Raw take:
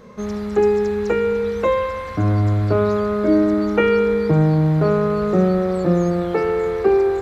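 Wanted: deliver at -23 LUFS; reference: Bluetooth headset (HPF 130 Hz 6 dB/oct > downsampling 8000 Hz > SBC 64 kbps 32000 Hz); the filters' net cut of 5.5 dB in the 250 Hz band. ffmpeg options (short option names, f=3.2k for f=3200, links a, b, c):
-af "highpass=f=130:p=1,equalizer=f=250:t=o:g=-7,aresample=8000,aresample=44100,volume=-1.5dB" -ar 32000 -c:a sbc -b:a 64k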